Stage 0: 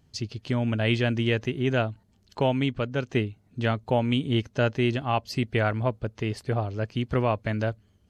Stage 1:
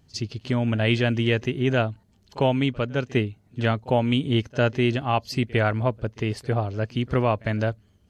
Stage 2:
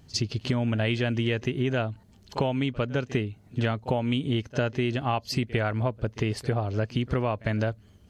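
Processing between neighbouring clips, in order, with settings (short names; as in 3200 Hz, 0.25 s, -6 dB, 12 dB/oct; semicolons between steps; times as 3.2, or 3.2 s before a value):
pre-echo 54 ms -23 dB; gain +2.5 dB
compressor 6:1, threshold -29 dBFS, peak gain reduction 12.5 dB; gain +5.5 dB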